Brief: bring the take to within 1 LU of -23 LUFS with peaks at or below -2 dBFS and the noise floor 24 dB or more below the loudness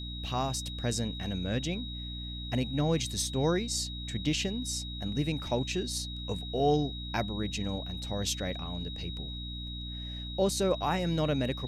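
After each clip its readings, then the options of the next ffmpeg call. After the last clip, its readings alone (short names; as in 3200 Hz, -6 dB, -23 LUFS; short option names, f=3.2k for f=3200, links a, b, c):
hum 60 Hz; harmonics up to 300 Hz; hum level -38 dBFS; steady tone 3800 Hz; tone level -41 dBFS; loudness -32.0 LUFS; peak -16.0 dBFS; loudness target -23.0 LUFS
-> -af "bandreject=f=60:t=h:w=4,bandreject=f=120:t=h:w=4,bandreject=f=180:t=h:w=4,bandreject=f=240:t=h:w=4,bandreject=f=300:t=h:w=4"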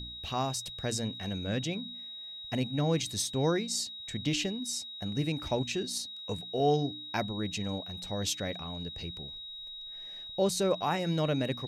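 hum none; steady tone 3800 Hz; tone level -41 dBFS
-> -af "bandreject=f=3.8k:w=30"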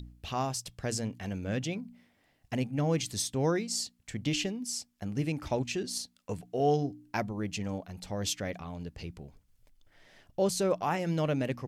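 steady tone none; loudness -33.0 LUFS; peak -16.5 dBFS; loudness target -23.0 LUFS
-> -af "volume=10dB"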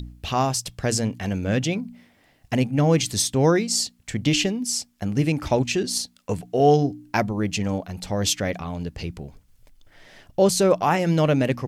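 loudness -23.0 LUFS; peak -6.5 dBFS; noise floor -60 dBFS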